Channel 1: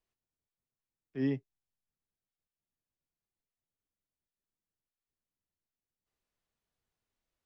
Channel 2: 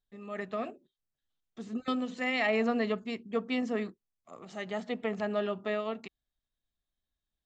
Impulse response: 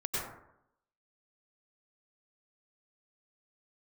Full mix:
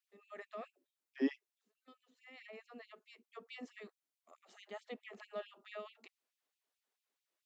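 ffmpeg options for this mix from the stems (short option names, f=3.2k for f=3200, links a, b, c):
-filter_complex "[0:a]volume=0.5dB,asplit=2[a][b];[1:a]volume=-11dB[c];[b]apad=whole_len=328604[d];[c][d]sidechaincompress=threshold=-55dB:ratio=4:attack=12:release=1290[e];[a][e]amix=inputs=2:normalize=0,afftfilt=real='re*gte(b*sr/1024,200*pow(2300/200,0.5+0.5*sin(2*PI*4.6*pts/sr)))':imag='im*gte(b*sr/1024,200*pow(2300/200,0.5+0.5*sin(2*PI*4.6*pts/sr)))':win_size=1024:overlap=0.75"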